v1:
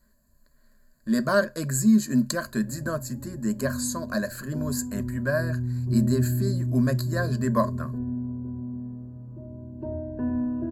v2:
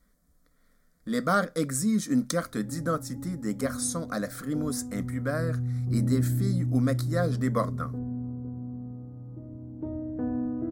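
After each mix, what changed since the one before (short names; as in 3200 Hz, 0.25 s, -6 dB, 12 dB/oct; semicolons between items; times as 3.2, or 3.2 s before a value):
master: remove ripple EQ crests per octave 1.4, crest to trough 17 dB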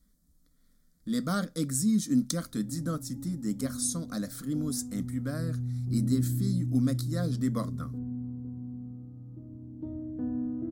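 background: add low shelf 200 Hz -4.5 dB; master: add band shelf 1000 Hz -10 dB 2.9 oct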